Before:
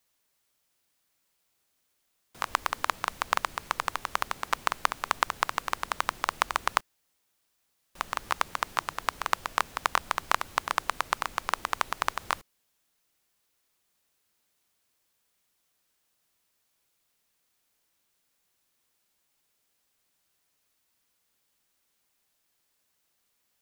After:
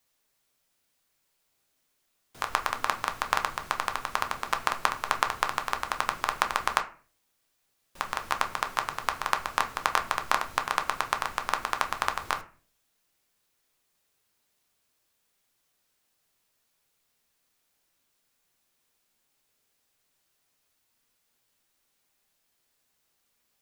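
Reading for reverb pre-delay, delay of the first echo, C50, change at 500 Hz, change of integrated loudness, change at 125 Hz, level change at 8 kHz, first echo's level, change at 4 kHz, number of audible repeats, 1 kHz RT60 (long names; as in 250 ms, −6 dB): 7 ms, no echo audible, 14.5 dB, +2.0 dB, +1.0 dB, +2.0 dB, +0.5 dB, no echo audible, +0.5 dB, no echo audible, 0.40 s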